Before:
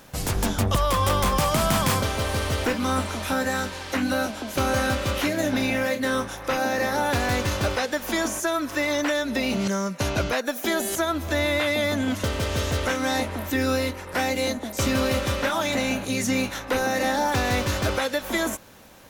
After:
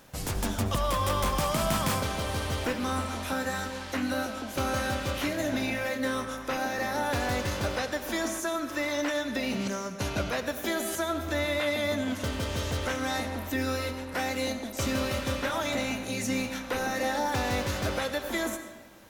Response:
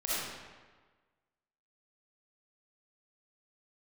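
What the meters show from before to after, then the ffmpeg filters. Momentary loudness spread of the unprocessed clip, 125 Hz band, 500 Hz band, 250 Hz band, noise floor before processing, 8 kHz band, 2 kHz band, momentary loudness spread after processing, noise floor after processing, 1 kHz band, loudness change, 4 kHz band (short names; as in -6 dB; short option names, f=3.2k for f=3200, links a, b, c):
5 LU, -6.0 dB, -5.5 dB, -5.5 dB, -38 dBFS, -5.5 dB, -5.5 dB, 5 LU, -40 dBFS, -5.5 dB, -5.5 dB, -5.5 dB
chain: -filter_complex "[0:a]asplit=2[a][b];[1:a]atrim=start_sample=2205,adelay=24[c];[b][c]afir=irnorm=-1:irlink=0,volume=-15.5dB[d];[a][d]amix=inputs=2:normalize=0,volume=-6dB"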